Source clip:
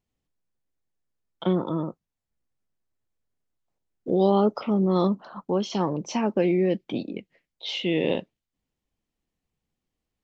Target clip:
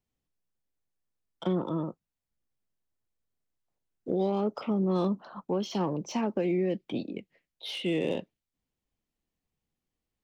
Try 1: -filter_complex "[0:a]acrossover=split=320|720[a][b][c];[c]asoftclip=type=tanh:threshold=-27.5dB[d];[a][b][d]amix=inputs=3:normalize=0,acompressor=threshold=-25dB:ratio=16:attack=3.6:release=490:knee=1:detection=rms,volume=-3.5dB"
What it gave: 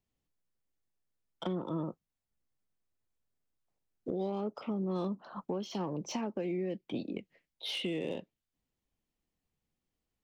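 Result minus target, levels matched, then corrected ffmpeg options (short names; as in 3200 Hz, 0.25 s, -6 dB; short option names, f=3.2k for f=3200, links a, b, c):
compressor: peak gain reduction +7 dB
-filter_complex "[0:a]acrossover=split=320|720[a][b][c];[c]asoftclip=type=tanh:threshold=-27.5dB[d];[a][b][d]amix=inputs=3:normalize=0,acompressor=threshold=-17.5dB:ratio=16:attack=3.6:release=490:knee=1:detection=rms,volume=-3.5dB"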